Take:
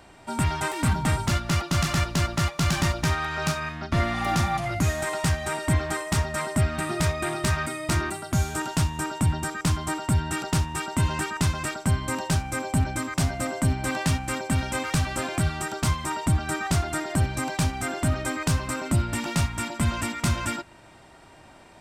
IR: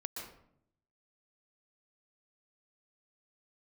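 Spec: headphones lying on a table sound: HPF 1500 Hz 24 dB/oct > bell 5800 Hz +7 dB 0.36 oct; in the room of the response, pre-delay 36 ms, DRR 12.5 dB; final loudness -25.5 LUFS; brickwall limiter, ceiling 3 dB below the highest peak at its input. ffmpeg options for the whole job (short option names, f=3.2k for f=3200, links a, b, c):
-filter_complex "[0:a]alimiter=limit=-16.5dB:level=0:latency=1,asplit=2[a][b];[1:a]atrim=start_sample=2205,adelay=36[c];[b][c]afir=irnorm=-1:irlink=0,volume=-12dB[d];[a][d]amix=inputs=2:normalize=0,highpass=f=1.5k:w=0.5412,highpass=f=1.5k:w=1.3066,equalizer=f=5.8k:t=o:w=0.36:g=7,volume=6.5dB"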